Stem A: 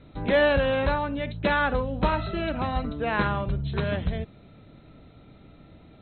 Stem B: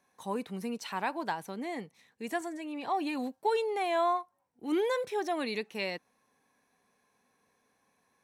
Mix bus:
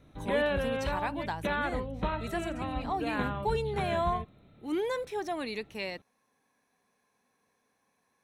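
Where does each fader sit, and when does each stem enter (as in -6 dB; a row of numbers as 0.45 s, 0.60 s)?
-8.0 dB, -2.0 dB; 0.00 s, 0.00 s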